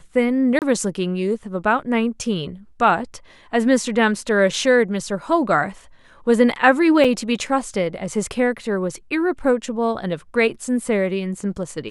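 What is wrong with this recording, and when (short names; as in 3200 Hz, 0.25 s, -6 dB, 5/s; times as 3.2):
0.59–0.62 gap 28 ms
7.04–7.05 gap 5.6 ms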